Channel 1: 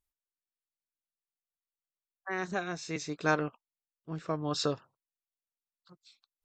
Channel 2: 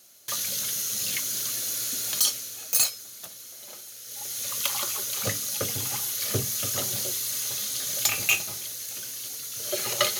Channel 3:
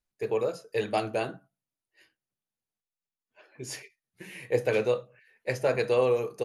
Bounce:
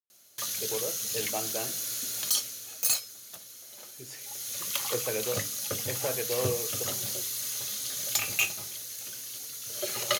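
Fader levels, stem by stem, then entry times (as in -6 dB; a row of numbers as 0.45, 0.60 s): off, -4.0 dB, -7.5 dB; off, 0.10 s, 0.40 s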